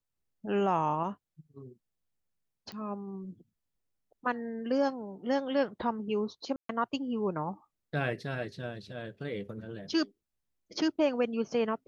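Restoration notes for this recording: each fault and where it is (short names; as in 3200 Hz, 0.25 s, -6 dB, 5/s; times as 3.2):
2.72 pop -29 dBFS
6.56–6.69 gap 0.133 s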